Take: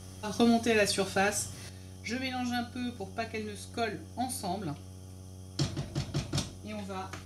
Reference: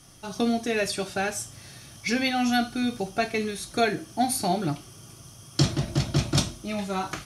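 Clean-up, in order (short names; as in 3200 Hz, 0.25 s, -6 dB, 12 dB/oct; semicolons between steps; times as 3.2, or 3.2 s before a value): de-hum 93.1 Hz, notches 9; gain correction +9.5 dB, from 1.69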